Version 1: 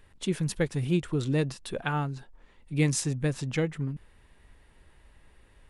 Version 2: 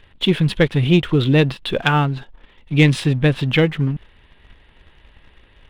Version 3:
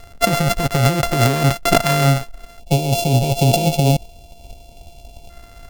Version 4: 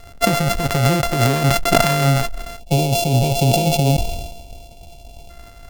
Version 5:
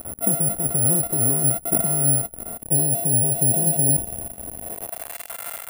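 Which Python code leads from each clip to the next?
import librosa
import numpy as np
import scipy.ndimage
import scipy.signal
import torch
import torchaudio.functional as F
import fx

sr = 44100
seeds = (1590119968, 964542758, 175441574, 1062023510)

y1 = fx.high_shelf_res(x, sr, hz=4700.0, db=-12.5, q=3.0)
y1 = fx.leveller(y1, sr, passes=1)
y1 = y1 * librosa.db_to_amplitude(8.5)
y2 = np.r_[np.sort(y1[:len(y1) // 64 * 64].reshape(-1, 64), axis=1).ravel(), y1[len(y1) // 64 * 64:]]
y2 = fx.over_compress(y2, sr, threshold_db=-20.0, ratio=-1.0)
y2 = fx.spec_box(y2, sr, start_s=2.59, length_s=2.71, low_hz=990.0, high_hz=2200.0, gain_db=-24)
y2 = y2 * librosa.db_to_amplitude(5.0)
y3 = fx.sustainer(y2, sr, db_per_s=45.0)
y3 = y3 * librosa.db_to_amplitude(-1.5)
y4 = y3 + 0.5 * 10.0 ** (-17.0 / 20.0) * np.sign(y3)
y4 = fx.filter_sweep_bandpass(y4, sr, from_hz=240.0, to_hz=1700.0, start_s=4.57, end_s=5.16, q=0.82)
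y4 = (np.kron(y4[::4], np.eye(4)[0]) * 4)[:len(y4)]
y4 = y4 * librosa.db_to_amplitude(-8.5)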